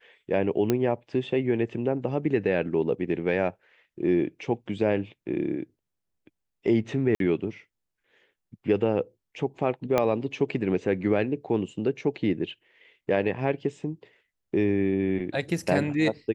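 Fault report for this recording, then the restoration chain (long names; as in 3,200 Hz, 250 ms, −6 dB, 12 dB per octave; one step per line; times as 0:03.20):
0:00.70: click −10 dBFS
0:07.15–0:07.20: drop-out 52 ms
0:09.98: click −10 dBFS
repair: click removal
repair the gap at 0:07.15, 52 ms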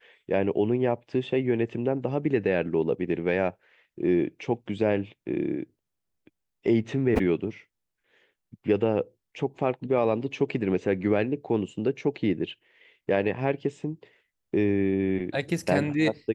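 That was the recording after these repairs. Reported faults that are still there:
0:09.98: click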